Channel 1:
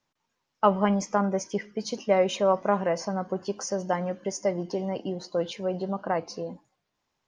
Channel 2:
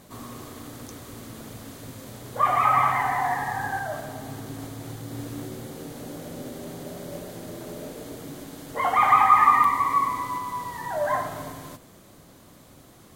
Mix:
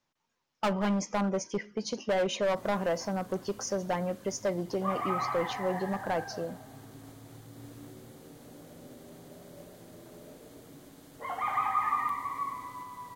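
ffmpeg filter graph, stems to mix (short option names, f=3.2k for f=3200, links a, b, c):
-filter_complex "[0:a]asoftclip=type=hard:threshold=-22dB,volume=-2dB[a];[1:a]adelay=2450,volume=-12.5dB[b];[a][b]amix=inputs=2:normalize=0"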